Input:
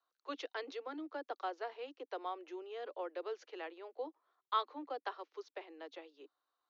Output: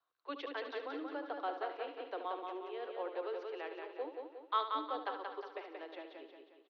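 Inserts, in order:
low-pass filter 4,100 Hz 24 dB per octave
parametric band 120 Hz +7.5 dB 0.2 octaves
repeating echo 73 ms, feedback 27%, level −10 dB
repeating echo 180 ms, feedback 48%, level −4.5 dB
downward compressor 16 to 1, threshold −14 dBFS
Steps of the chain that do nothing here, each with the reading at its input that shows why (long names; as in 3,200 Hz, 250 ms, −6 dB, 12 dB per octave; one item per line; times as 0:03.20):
parametric band 120 Hz: nothing at its input below 240 Hz
downward compressor, threshold −14 dBFS: peak of its input −21.5 dBFS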